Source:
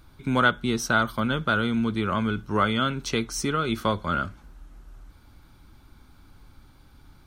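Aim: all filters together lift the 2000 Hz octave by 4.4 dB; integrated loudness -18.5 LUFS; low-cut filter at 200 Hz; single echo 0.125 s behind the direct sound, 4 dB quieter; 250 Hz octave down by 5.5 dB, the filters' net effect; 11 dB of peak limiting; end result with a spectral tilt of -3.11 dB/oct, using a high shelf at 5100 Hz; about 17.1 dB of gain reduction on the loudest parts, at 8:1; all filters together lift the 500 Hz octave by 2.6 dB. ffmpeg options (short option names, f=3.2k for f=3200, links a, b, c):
-af "highpass=200,equalizer=f=250:t=o:g=-5.5,equalizer=f=500:t=o:g=4.5,equalizer=f=2k:t=o:g=7.5,highshelf=f=5.1k:g=-4.5,acompressor=threshold=-31dB:ratio=8,alimiter=level_in=3.5dB:limit=-24dB:level=0:latency=1,volume=-3.5dB,aecho=1:1:125:0.631,volume=18.5dB"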